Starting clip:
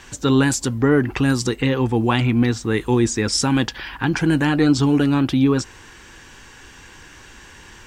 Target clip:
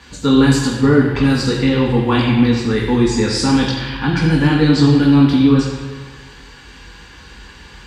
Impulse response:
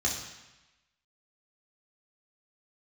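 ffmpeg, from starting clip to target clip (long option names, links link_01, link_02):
-filter_complex "[1:a]atrim=start_sample=2205,asetrate=29547,aresample=44100[link_01];[0:a][link_01]afir=irnorm=-1:irlink=0,volume=-8dB"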